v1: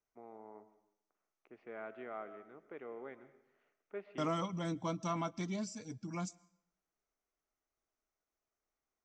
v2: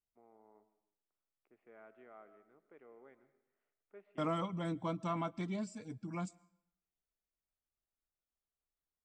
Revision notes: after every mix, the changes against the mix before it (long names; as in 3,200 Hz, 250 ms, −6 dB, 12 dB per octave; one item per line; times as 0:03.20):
first voice −11.5 dB
master: remove low-pass with resonance 6,100 Hz, resonance Q 5.9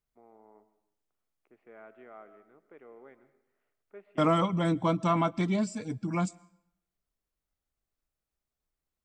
first voice +7.0 dB
second voice +11.0 dB